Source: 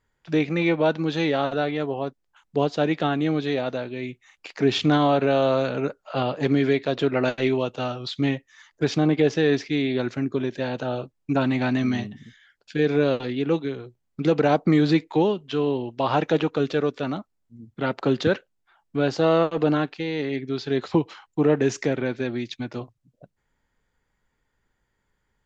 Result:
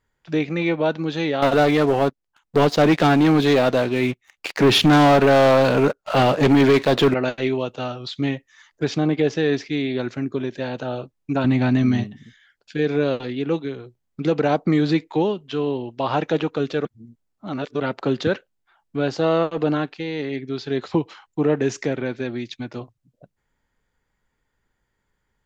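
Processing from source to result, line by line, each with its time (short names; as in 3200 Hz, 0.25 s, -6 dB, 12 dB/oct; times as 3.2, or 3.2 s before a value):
1.42–7.14 sample leveller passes 3
11.44–12.04 low shelf 240 Hz +10 dB
16.85–17.8 reverse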